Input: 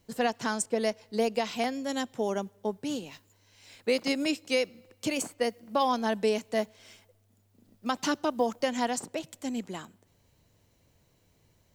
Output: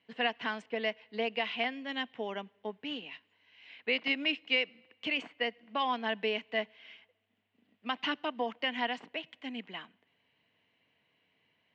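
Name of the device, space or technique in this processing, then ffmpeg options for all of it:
phone earpiece: -af "highpass=340,equalizer=frequency=360:width_type=q:width=4:gain=-10,equalizer=frequency=550:width_type=q:width=4:gain=-10,equalizer=frequency=840:width_type=q:width=4:gain=-5,equalizer=frequency=1300:width_type=q:width=4:gain=-6,equalizer=frequency=2000:width_type=q:width=4:gain=5,equalizer=frequency=2900:width_type=q:width=4:gain=8,lowpass=frequency=3100:width=0.5412,lowpass=frequency=3100:width=1.3066"

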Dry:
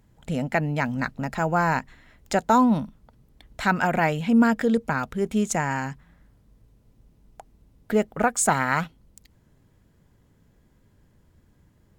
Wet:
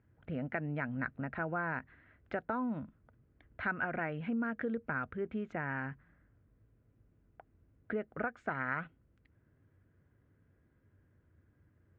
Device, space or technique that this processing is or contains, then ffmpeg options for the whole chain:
bass amplifier: -af "acompressor=threshold=-23dB:ratio=4,highpass=61,equalizer=frequency=92:width_type=q:width=4:gain=7,equalizer=frequency=190:width_type=q:width=4:gain=-5,equalizer=frequency=320:width_type=q:width=4:gain=3,equalizer=frequency=880:width_type=q:width=4:gain=-7,equalizer=frequency=1500:width_type=q:width=4:gain=6,lowpass=frequency=2400:width=0.5412,lowpass=frequency=2400:width=1.3066,volume=-9dB"

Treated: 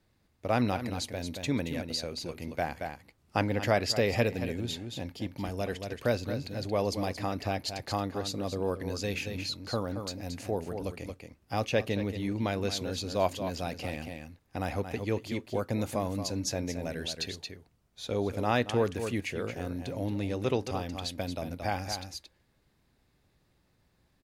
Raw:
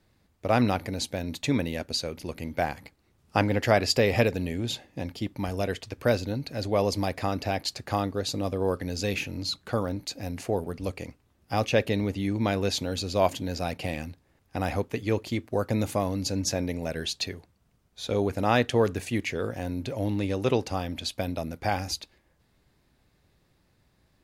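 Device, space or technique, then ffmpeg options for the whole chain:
ducked delay: -filter_complex "[0:a]asplit=3[link_01][link_02][link_03];[link_02]adelay=226,volume=-5.5dB[link_04];[link_03]apad=whole_len=1078514[link_05];[link_04][link_05]sidechaincompress=threshold=-31dB:ratio=8:attack=50:release=218[link_06];[link_01][link_06]amix=inputs=2:normalize=0,volume=-4.5dB"

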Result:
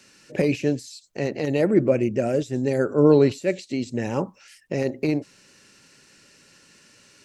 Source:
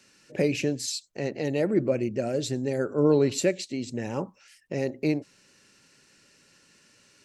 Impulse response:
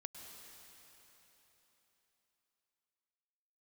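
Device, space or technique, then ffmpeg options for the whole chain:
de-esser from a sidechain: -filter_complex "[0:a]asplit=2[link_01][link_02];[link_02]highpass=frequency=4600:width=0.5412,highpass=frequency=4600:width=1.3066,apad=whole_len=319662[link_03];[link_01][link_03]sidechaincompress=threshold=-45dB:ratio=6:attack=0.75:release=72,asettb=1/sr,asplit=3[link_04][link_05][link_06];[link_04]atrim=end=1.654[link_07];[link_05]atrim=start=1.65:end=2.58,asetpts=PTS-STARTPTS,afade=type=in:duration=0.004:curve=qsin,afade=type=out:start_time=0.926:duration=0.004:curve=qsin,bandreject=frequency=4300:width=5.6[link_08];[link_06]atrim=start=2.576[link_09];[link_07][link_08]acrossfade=duration=0.004:curve1=hsin:curve2=qsin[link_10];[link_10][link_09]acrossfade=duration=0.004:curve1=qsin:curve2=hsin,volume=5.5dB"

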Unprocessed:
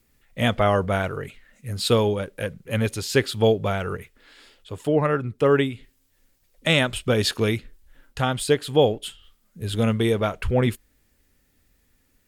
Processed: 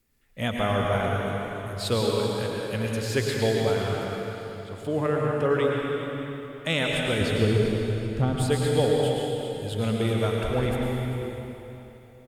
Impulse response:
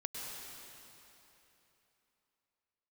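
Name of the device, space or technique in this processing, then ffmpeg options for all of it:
cave: -filter_complex "[0:a]asettb=1/sr,asplit=3[link_01][link_02][link_03];[link_01]atrim=end=7.214[link_04];[link_02]atrim=start=7.21:end=8.36,asetpts=PTS-STARTPTS,afade=type=in:duration=0.004:curve=qsin,afade=type=out:start_time=1.146:duration=0.004:curve=qsin,tiltshelf=frequency=700:gain=10[link_05];[link_03]atrim=start=8.356[link_06];[link_04][link_05]acrossfade=duration=0.004:curve1=hsin:curve2=qsin[link_07];[link_07][link_06]acrossfade=duration=0.004:curve1=qsin:curve2=hsin,aecho=1:1:395:0.211[link_08];[1:a]atrim=start_sample=2205[link_09];[link_08][link_09]afir=irnorm=-1:irlink=0,volume=-3.5dB"

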